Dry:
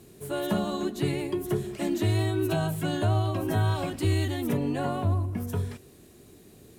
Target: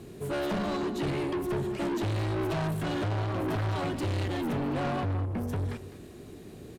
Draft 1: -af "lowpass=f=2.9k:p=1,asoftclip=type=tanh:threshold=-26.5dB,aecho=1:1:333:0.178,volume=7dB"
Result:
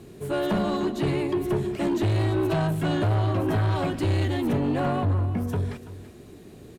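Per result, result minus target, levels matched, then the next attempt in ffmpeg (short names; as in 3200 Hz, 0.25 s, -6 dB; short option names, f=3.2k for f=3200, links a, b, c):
echo 0.128 s late; soft clip: distortion -5 dB
-af "lowpass=f=2.9k:p=1,asoftclip=type=tanh:threshold=-26.5dB,aecho=1:1:205:0.178,volume=7dB"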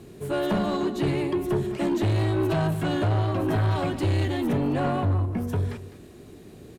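soft clip: distortion -5 dB
-af "lowpass=f=2.9k:p=1,asoftclip=type=tanh:threshold=-35dB,aecho=1:1:205:0.178,volume=7dB"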